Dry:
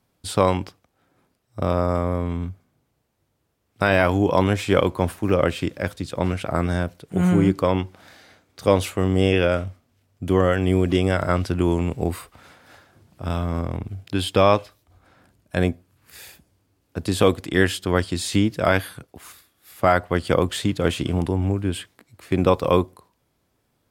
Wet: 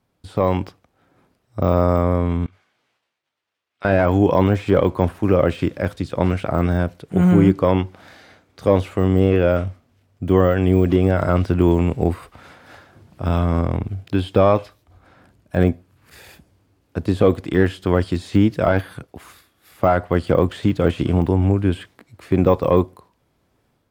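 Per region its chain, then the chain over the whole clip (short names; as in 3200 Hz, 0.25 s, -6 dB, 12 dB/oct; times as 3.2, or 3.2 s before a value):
2.46–3.85 transient shaper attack -9 dB, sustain +11 dB + band-pass 2900 Hz, Q 0.87 + detuned doubles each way 16 cents
whole clip: de-esser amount 100%; high shelf 4700 Hz -8 dB; AGC gain up to 6.5 dB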